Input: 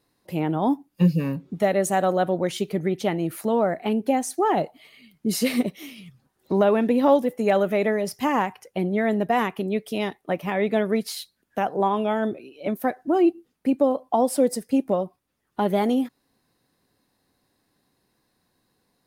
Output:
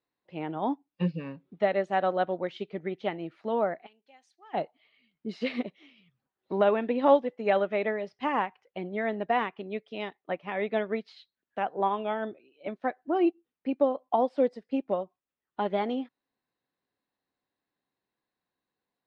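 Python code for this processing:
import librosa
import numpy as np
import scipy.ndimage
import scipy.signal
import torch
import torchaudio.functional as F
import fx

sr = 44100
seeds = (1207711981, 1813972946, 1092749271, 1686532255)

y = fx.pre_emphasis(x, sr, coefficient=0.97, at=(3.85, 4.53), fade=0.02)
y = scipy.signal.sosfilt(scipy.signal.butter(4, 3800.0, 'lowpass', fs=sr, output='sos'), y)
y = fx.low_shelf(y, sr, hz=260.0, db=-10.5)
y = fx.upward_expand(y, sr, threshold_db=-44.0, expansion=1.5)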